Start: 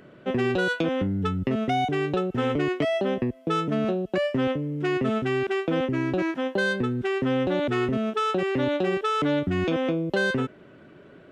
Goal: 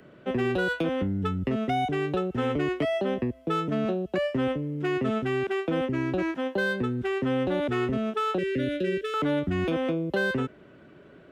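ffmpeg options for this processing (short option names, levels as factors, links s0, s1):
-filter_complex "[0:a]asettb=1/sr,asplit=3[s0][s1][s2];[s0]atrim=end=8.384[s3];[s1]atrim=start=8.38:end=9.14,asetpts=PTS-STARTPTS,afade=t=in:d=0.004:c=qsin,afade=t=out:st=0.756:d=0.004:c=qsin,asuperstop=centerf=910:order=8:qfactor=1[s4];[s2]atrim=start=9.136[s5];[s3][s4]acrossfade=d=0.004:c1=hsin:c2=qsin[s6];[s6][s5]acrossfade=d=0.004:c1=qsin:c2=hsin,acrossover=split=110|390|2800[s7][s8][s9][s10];[s10]asoftclip=type=tanh:threshold=0.0112[s11];[s7][s8][s9][s11]amix=inputs=4:normalize=0,equalizer=f=63:w=7.4:g=10,volume=0.794"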